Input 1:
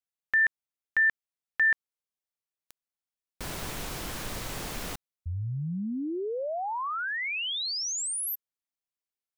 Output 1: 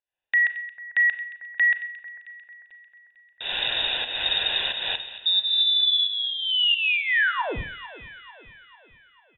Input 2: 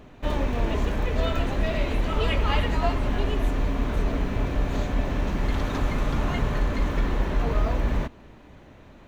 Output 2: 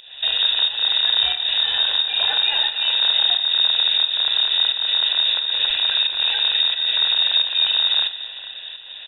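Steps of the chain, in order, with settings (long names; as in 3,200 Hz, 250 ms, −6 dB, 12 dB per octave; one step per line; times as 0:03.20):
loose part that buzzes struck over −22 dBFS, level −16 dBFS
low-shelf EQ 130 Hz −5 dB
notch filter 2,400 Hz, Q 24
comb filter 1 ms, depth 68%
in parallel at +1 dB: downward compressor, threshold −31 dBFS
on the sum: brickwall limiter −18 dBFS
fake sidechain pumping 89 BPM, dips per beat 1, −15 dB, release 267 ms
high-frequency loss of the air 100 metres
on a send: delay that swaps between a low-pass and a high-pass 223 ms, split 1,800 Hz, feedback 70%, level −13 dB
on the sum: four-comb reverb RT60 0.45 s, combs from 29 ms, DRR 10.5 dB
voice inversion scrambler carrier 3,700 Hz
level +4 dB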